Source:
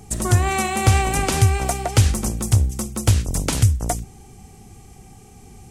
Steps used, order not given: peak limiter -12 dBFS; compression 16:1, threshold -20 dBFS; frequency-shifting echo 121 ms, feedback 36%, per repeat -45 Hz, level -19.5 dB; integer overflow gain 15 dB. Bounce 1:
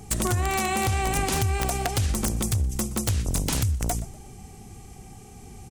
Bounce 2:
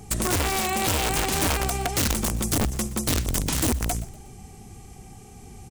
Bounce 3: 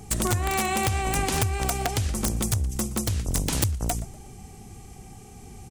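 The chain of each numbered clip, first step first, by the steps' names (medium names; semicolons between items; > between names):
peak limiter > frequency-shifting echo > compression > integer overflow; peak limiter > integer overflow > frequency-shifting echo > compression; compression > frequency-shifting echo > peak limiter > integer overflow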